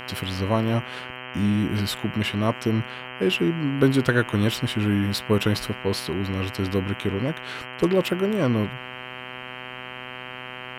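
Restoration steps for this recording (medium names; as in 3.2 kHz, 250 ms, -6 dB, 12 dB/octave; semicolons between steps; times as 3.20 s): de-click; de-hum 126.2 Hz, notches 25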